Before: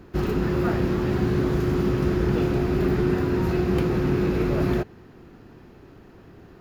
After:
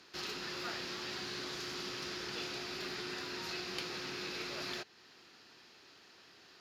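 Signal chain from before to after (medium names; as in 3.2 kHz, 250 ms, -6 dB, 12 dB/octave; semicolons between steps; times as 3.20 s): in parallel at +0.5 dB: compression, threshold -34 dBFS, peak gain reduction 15.5 dB; on the sum: band-pass filter 4.7 kHz, Q 2; trim +4.5 dB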